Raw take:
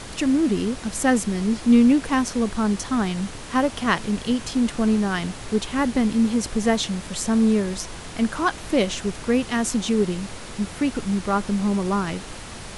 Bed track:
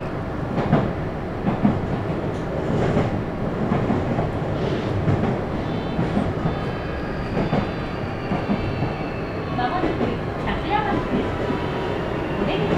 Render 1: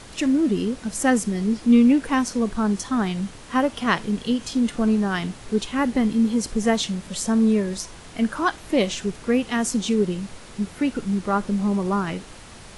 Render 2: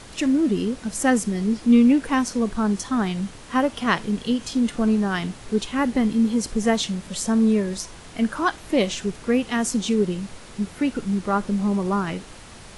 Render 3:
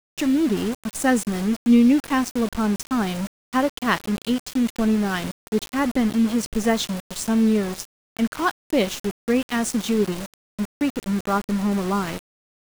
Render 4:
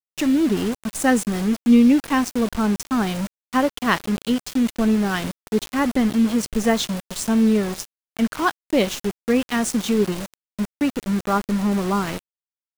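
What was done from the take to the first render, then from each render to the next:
noise print and reduce 6 dB
no audible change
small samples zeroed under -28 dBFS
trim +1.5 dB

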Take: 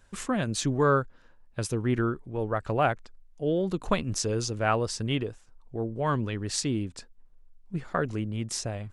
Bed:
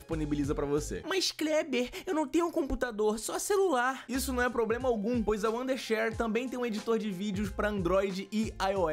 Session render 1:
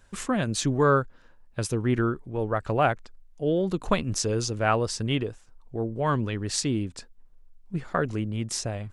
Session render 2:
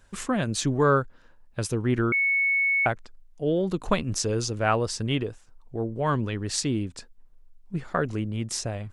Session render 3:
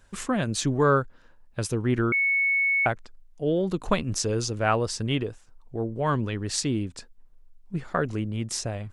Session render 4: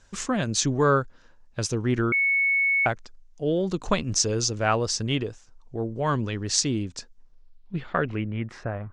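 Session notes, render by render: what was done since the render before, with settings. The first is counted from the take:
trim +2 dB
2.12–2.86 s: bleep 2.21 kHz -20 dBFS
no audible change
low-pass sweep 6.3 kHz -> 1.2 kHz, 7.17–8.90 s

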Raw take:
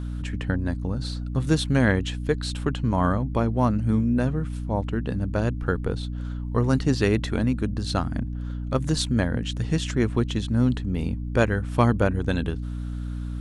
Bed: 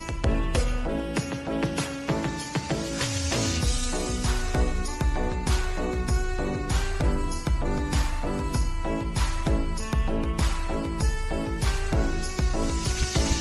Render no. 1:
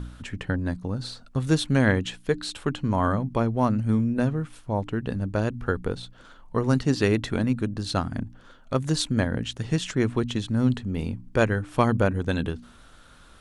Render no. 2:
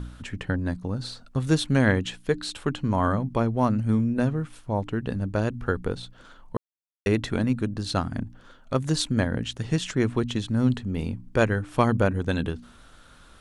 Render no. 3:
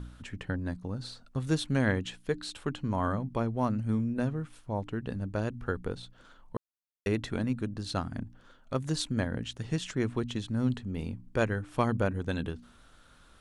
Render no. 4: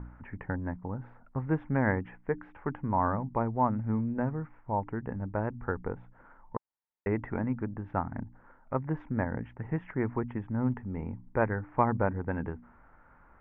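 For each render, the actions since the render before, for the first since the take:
de-hum 60 Hz, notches 5
6.57–7.06 s: mute
trim -6.5 dB
elliptic low-pass 2.1 kHz, stop band 50 dB; peaking EQ 880 Hz +10 dB 0.4 oct

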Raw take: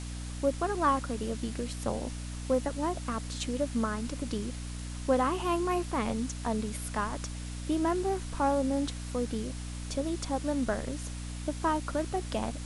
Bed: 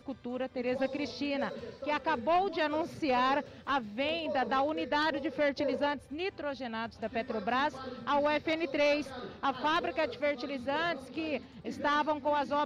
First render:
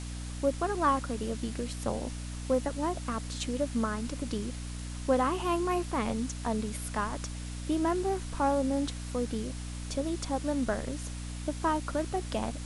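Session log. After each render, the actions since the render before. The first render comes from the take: no audible change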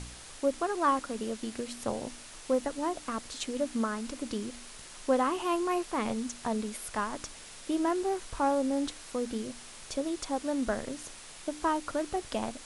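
de-hum 60 Hz, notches 5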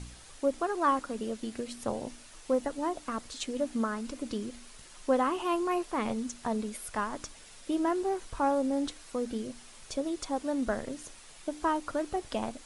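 noise reduction 6 dB, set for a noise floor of -48 dBFS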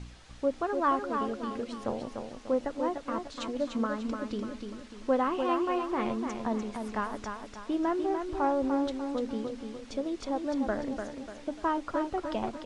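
distance through air 110 m; feedback delay 296 ms, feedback 42%, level -6 dB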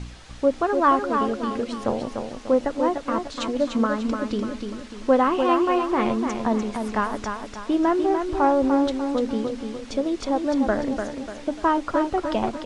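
trim +8.5 dB

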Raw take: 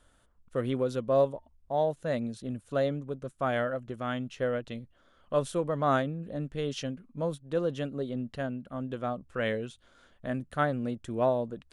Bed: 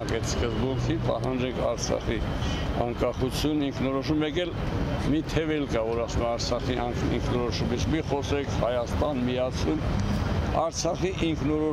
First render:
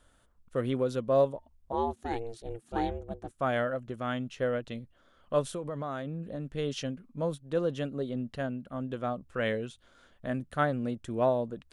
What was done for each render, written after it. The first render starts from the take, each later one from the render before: 1.72–3.31 s: ring modulator 230 Hz; 5.41–6.49 s: compression 10:1, threshold -31 dBFS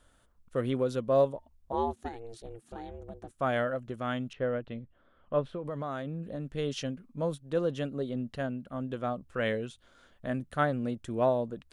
2.08–3.33 s: compression 12:1, threshold -37 dBFS; 4.33–5.65 s: distance through air 380 m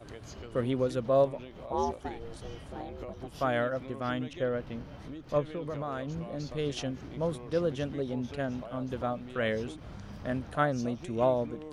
add bed -18 dB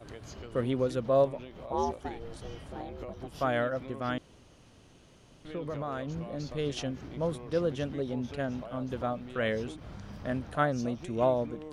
4.18–5.45 s: room tone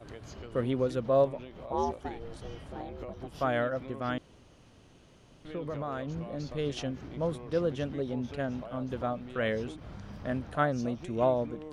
treble shelf 5.1 kHz -4.5 dB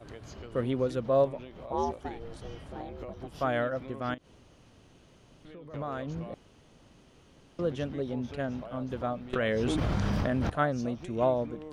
4.14–5.74 s: compression 3:1, threshold -47 dBFS; 6.34–7.59 s: room tone; 9.33–10.50 s: level flattener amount 100%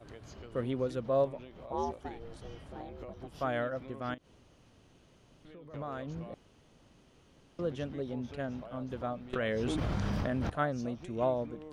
trim -4 dB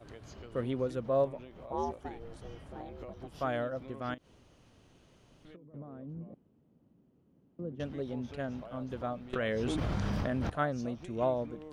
0.81–2.86 s: peaking EQ 4.1 kHz -3.5 dB 1.2 oct; 3.55–4.00 s: dynamic bell 1.9 kHz, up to -6 dB, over -50 dBFS, Q 1.2; 5.56–7.80 s: band-pass filter 210 Hz, Q 1.3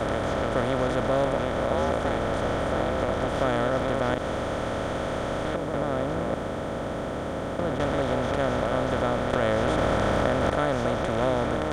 spectral levelling over time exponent 0.2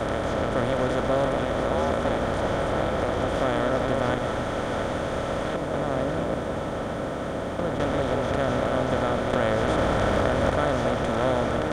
two-band feedback delay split 670 Hz, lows 169 ms, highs 680 ms, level -7.5 dB

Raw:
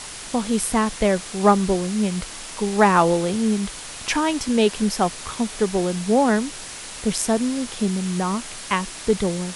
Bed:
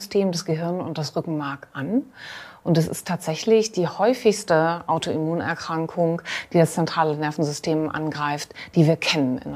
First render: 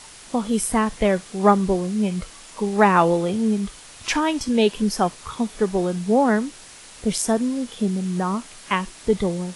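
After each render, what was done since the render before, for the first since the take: noise print and reduce 8 dB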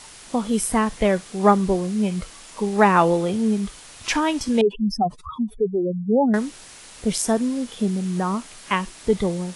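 4.61–6.34 s: spectral contrast enhancement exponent 3.2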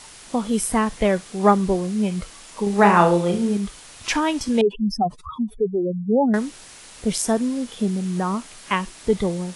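2.63–3.57 s: flutter echo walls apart 5.9 m, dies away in 0.36 s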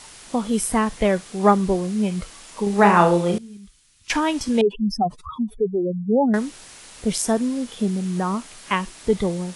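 3.38–4.10 s: amplifier tone stack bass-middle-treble 6-0-2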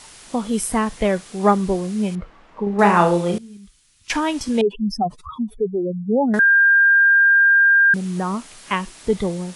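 2.15–2.79 s: low-pass 1.5 kHz; 6.39–7.94 s: bleep 1.6 kHz -10 dBFS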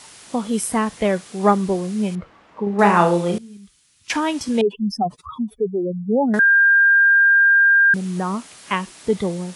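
high-pass 82 Hz 12 dB/octave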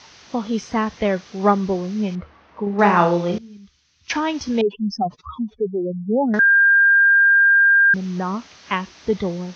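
Chebyshev low-pass 6.2 kHz, order 6; peaking EQ 73 Hz +11.5 dB 0.39 oct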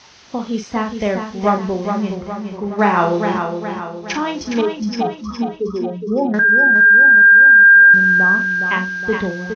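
doubling 43 ms -8 dB; feedback delay 415 ms, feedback 50%, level -6.5 dB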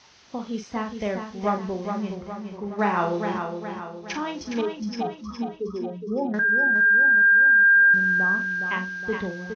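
trim -8.5 dB

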